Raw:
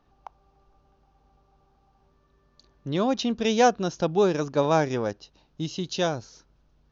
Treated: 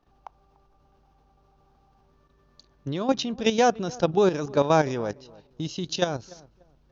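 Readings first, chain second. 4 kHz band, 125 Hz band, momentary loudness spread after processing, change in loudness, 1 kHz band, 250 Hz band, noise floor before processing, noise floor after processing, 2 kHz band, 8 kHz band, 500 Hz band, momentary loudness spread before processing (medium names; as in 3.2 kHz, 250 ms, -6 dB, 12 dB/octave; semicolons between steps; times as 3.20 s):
+0.5 dB, 0.0 dB, 14 LU, 0.0 dB, 0.0 dB, -0.5 dB, -65 dBFS, -63 dBFS, 0.0 dB, no reading, +0.5 dB, 14 LU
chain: level held to a coarse grid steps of 11 dB; filtered feedback delay 293 ms, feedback 26%, low-pass 1.3 kHz, level -21.5 dB; trim +4.5 dB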